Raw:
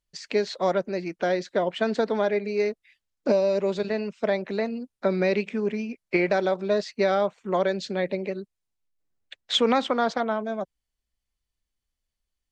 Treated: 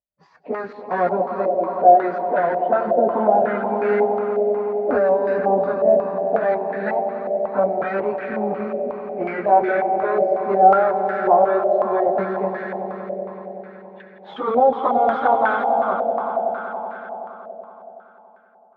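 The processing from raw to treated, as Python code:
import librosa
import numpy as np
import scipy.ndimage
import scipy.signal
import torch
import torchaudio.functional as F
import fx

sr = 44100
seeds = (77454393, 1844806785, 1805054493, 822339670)

p1 = fx.leveller(x, sr, passes=2)
p2 = fx.level_steps(p1, sr, step_db=21)
p3 = p1 + F.gain(torch.from_numpy(p2), 3.0).numpy()
p4 = fx.stretch_vocoder_free(p3, sr, factor=1.5)
p5 = scipy.signal.sosfilt(scipy.signal.butter(2, 59.0, 'highpass', fs=sr, output='sos'), p4)
p6 = fx.peak_eq(p5, sr, hz=780.0, db=6.5, octaves=0.32)
p7 = p6 + fx.echo_swell(p6, sr, ms=94, loudest=5, wet_db=-12.0, dry=0)
p8 = fx.filter_held_lowpass(p7, sr, hz=5.5, low_hz=630.0, high_hz=1600.0)
y = F.gain(torch.from_numpy(p8), -9.0).numpy()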